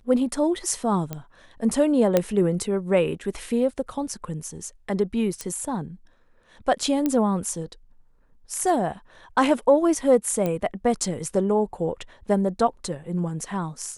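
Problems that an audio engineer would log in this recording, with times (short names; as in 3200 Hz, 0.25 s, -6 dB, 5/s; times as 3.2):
1.13 pop -16 dBFS
2.17 pop -6 dBFS
5.41 pop -15 dBFS
7.06 pop -11 dBFS
10.46 pop -13 dBFS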